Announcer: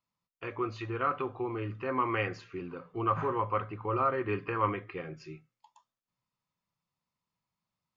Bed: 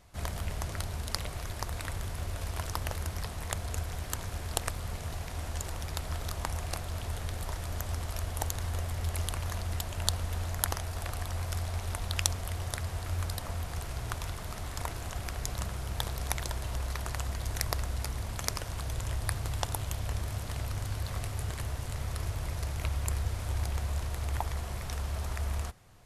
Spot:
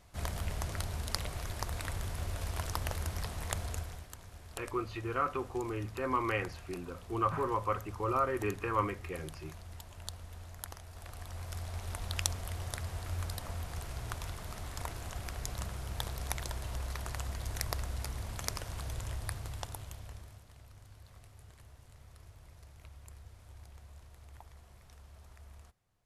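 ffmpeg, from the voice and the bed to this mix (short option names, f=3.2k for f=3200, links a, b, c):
-filter_complex "[0:a]adelay=4150,volume=-2dB[a];[1:a]volume=8.5dB,afade=t=out:st=3.61:d=0.48:silence=0.237137,afade=t=in:st=10.86:d=1.25:silence=0.316228,afade=t=out:st=18.85:d=1.6:silence=0.149624[b];[a][b]amix=inputs=2:normalize=0"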